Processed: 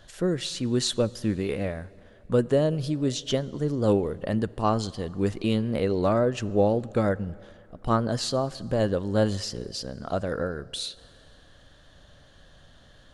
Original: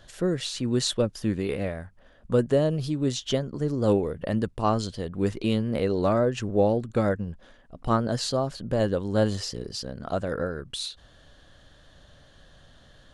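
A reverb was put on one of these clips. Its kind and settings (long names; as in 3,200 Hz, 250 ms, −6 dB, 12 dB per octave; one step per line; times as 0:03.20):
dense smooth reverb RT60 2.7 s, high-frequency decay 0.85×, DRR 20 dB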